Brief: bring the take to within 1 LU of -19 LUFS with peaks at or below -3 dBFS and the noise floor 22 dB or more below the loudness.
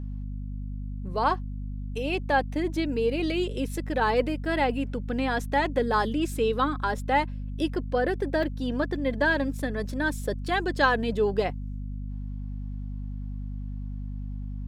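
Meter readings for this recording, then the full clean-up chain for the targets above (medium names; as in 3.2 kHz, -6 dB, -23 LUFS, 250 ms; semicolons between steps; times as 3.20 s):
dropouts 1; longest dropout 1.1 ms; hum 50 Hz; highest harmonic 250 Hz; hum level -31 dBFS; loudness -28.0 LUFS; peak level -10.0 dBFS; loudness target -19.0 LUFS
-> interpolate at 8.43 s, 1.1 ms; de-hum 50 Hz, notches 5; trim +9 dB; peak limiter -3 dBFS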